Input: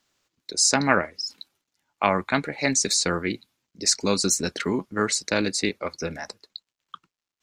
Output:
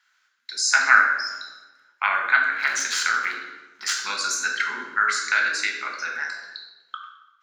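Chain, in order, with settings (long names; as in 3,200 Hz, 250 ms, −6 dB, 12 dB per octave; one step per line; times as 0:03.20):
0:02.52–0:03.94: sub-harmonics by changed cycles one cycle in 3, muted
high-pass with resonance 1,500 Hz, resonance Q 7.1
convolution reverb RT60 1.1 s, pre-delay 3 ms, DRR −0.5 dB
in parallel at −2.5 dB: downward compressor, threshold −24 dBFS, peak gain reduction 23 dB
on the sum: level −11 dB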